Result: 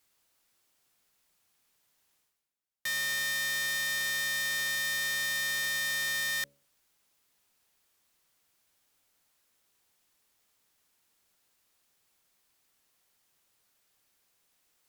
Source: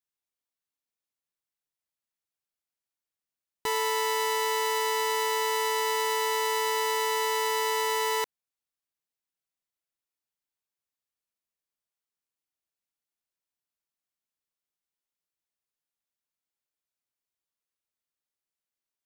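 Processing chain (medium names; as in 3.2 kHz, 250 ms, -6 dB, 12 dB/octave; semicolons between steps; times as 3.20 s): integer overflow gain 26.5 dB; reverse; upward compressor, threshold -54 dBFS; reverse; de-hum 55.38 Hz, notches 9; tape speed +28%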